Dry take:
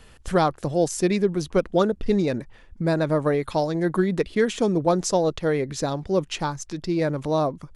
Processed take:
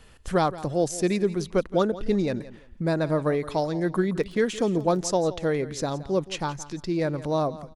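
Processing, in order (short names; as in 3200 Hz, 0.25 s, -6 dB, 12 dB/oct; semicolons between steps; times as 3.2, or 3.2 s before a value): feedback echo 0.17 s, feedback 22%, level -16.5 dB; 4.2–4.98 crackle 27/s -33 dBFS; gain -2.5 dB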